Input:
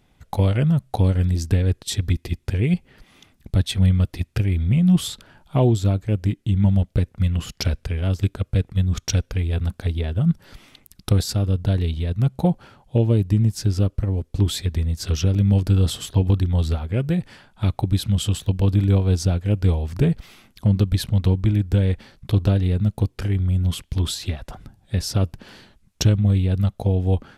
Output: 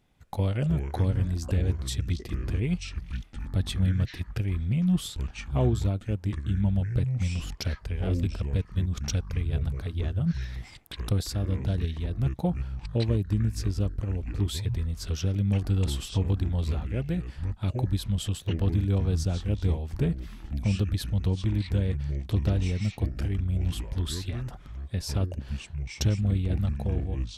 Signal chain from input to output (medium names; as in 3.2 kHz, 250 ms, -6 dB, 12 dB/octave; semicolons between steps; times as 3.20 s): fade out at the end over 0.67 s; ever faster or slower copies 158 ms, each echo -6 st, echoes 2, each echo -6 dB; trim -8 dB